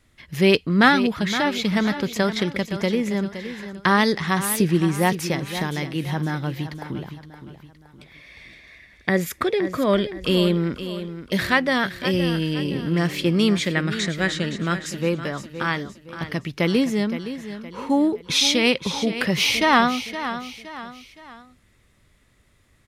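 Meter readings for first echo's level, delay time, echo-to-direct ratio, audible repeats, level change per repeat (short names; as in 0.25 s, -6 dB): -11.5 dB, 0.517 s, -10.5 dB, 3, -7.5 dB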